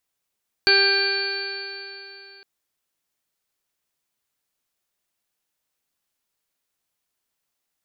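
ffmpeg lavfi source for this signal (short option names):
-f lavfi -i "aevalsrc='0.0891*pow(10,-3*t/3.19)*sin(2*PI*393.13*t)+0.0335*pow(10,-3*t/3.19)*sin(2*PI*787.07*t)+0.015*pow(10,-3*t/3.19)*sin(2*PI*1182.6*t)+0.133*pow(10,-3*t/3.19)*sin(2*PI*1580.53*t)+0.0141*pow(10,-3*t/3.19)*sin(2*PI*1981.63*t)+0.0794*pow(10,-3*t/3.19)*sin(2*PI*2386.69*t)+0.02*pow(10,-3*t/3.19)*sin(2*PI*2796.46*t)+0.02*pow(10,-3*t/3.19)*sin(2*PI*3211.68*t)+0.0106*pow(10,-3*t/3.19)*sin(2*PI*3633.1*t)+0.0398*pow(10,-3*t/3.19)*sin(2*PI*4061.42*t)+0.168*pow(10,-3*t/3.19)*sin(2*PI*4497.33*t)':d=1.76:s=44100"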